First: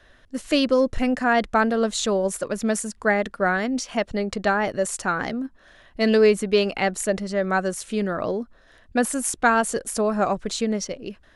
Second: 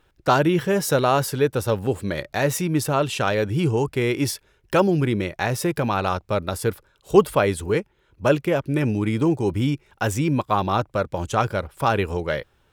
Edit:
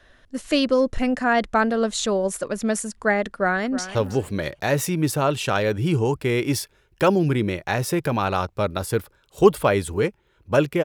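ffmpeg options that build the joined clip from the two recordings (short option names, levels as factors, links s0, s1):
-filter_complex "[0:a]apad=whole_dur=10.84,atrim=end=10.84,atrim=end=3.952[s0];[1:a]atrim=start=1.668:end=8.56[s1];[s0][s1]acrossfade=d=0.004:c1=hsin:c2=hsin,asplit=2[s2][s3];[s3]afade=t=in:st=3.31:d=0.01,afade=t=out:st=3.95:d=0.01,aecho=0:1:320|640:0.223872|0.0447744[s4];[s2][s4]amix=inputs=2:normalize=0"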